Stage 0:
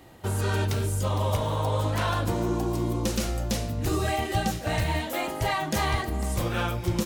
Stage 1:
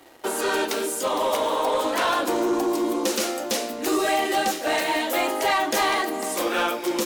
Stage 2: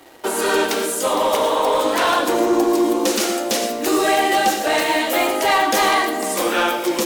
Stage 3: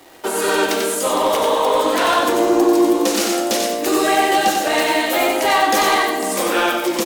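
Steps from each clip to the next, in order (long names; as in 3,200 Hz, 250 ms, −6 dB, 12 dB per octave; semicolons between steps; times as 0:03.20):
Butterworth high-pass 270 Hz 36 dB per octave; leveller curve on the samples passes 2
convolution reverb, pre-delay 3 ms, DRR 7 dB; level +4.5 dB
surface crackle 430 per second −38 dBFS; single-tap delay 92 ms −5 dB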